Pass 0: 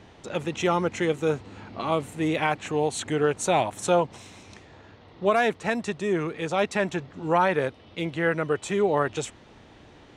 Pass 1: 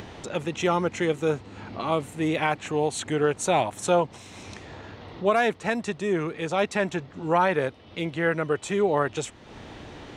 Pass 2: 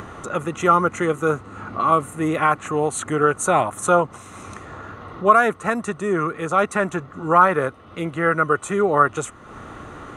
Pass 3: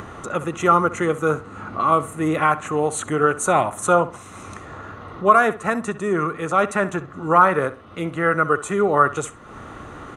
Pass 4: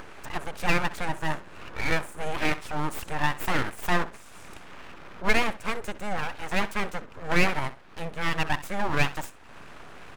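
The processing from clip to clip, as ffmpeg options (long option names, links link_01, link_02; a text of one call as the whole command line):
ffmpeg -i in.wav -af "acompressor=mode=upward:threshold=-32dB:ratio=2.5" out.wav
ffmpeg -i in.wav -af "superequalizer=10b=3.55:12b=0.562:13b=0.398:14b=0.316:16b=2,volume=3.5dB" out.wav
ffmpeg -i in.wav -filter_complex "[0:a]asplit=2[link_01][link_02];[link_02]adelay=64,lowpass=frequency=4000:poles=1,volume=-15dB,asplit=2[link_03][link_04];[link_04]adelay=64,lowpass=frequency=4000:poles=1,volume=0.28,asplit=2[link_05][link_06];[link_06]adelay=64,lowpass=frequency=4000:poles=1,volume=0.28[link_07];[link_01][link_03][link_05][link_07]amix=inputs=4:normalize=0" out.wav
ffmpeg -i in.wav -af "aeval=exprs='abs(val(0))':channel_layout=same,volume=-5.5dB" out.wav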